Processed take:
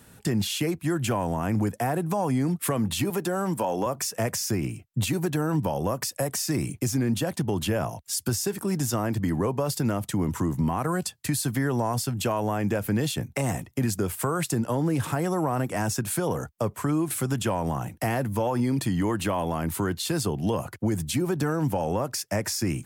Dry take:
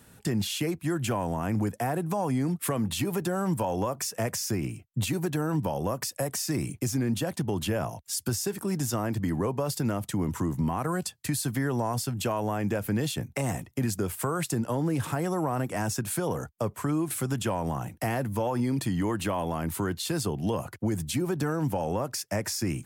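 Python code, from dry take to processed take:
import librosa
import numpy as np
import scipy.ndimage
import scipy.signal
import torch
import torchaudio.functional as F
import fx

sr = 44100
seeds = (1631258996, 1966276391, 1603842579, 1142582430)

y = fx.highpass(x, sr, hz=190.0, slope=12, at=(3.1, 3.86))
y = y * 10.0 ** (2.5 / 20.0)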